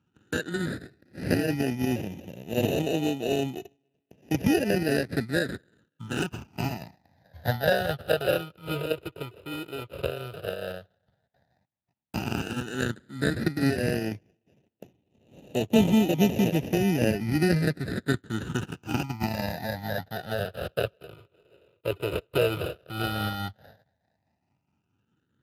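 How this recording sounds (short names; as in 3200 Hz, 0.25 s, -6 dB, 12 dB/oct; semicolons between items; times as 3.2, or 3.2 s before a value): aliases and images of a low sample rate 1100 Hz, jitter 0%; phasing stages 8, 0.08 Hz, lowest notch 230–1500 Hz; tremolo triangle 4.7 Hz, depth 40%; Speex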